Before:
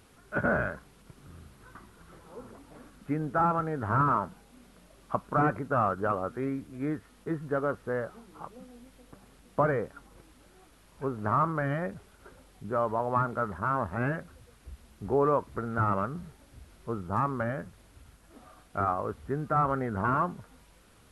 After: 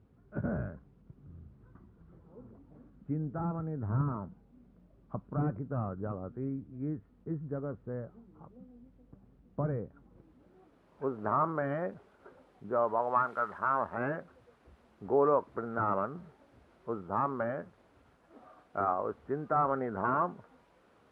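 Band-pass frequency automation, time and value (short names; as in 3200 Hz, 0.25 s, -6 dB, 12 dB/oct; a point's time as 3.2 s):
band-pass, Q 0.62
9.85 s 110 Hz
11.11 s 550 Hz
12.75 s 550 Hz
13.35 s 1600 Hz
14.15 s 600 Hz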